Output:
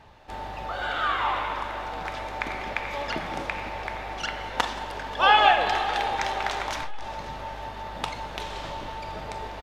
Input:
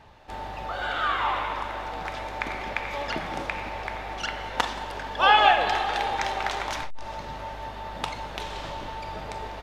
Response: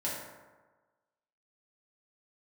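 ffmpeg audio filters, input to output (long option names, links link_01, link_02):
-af "aecho=1:1:533|1066|1599|2132|2665:0.0944|0.0548|0.0318|0.0184|0.0107"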